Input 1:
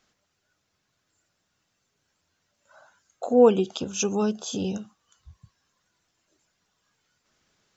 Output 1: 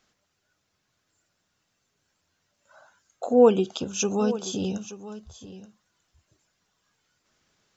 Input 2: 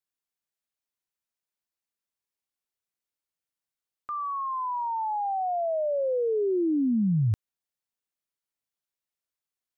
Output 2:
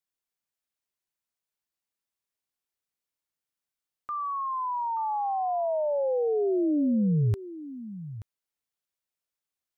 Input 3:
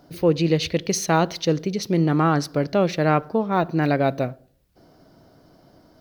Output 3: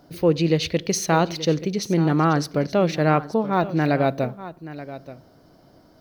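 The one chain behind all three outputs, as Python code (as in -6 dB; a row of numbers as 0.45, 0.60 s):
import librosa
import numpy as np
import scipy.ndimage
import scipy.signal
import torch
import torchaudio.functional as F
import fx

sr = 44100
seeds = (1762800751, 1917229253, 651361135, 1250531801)

y = x + 10.0 ** (-15.0 / 20.0) * np.pad(x, (int(879 * sr / 1000.0), 0))[:len(x)]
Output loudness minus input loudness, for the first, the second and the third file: 0.0, 0.0, 0.0 LU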